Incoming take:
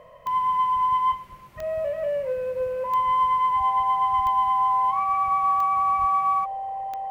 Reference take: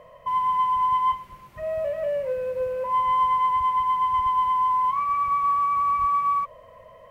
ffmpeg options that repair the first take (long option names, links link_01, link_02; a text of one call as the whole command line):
ffmpeg -i in.wav -af "adeclick=threshold=4,bandreject=frequency=780:width=30" out.wav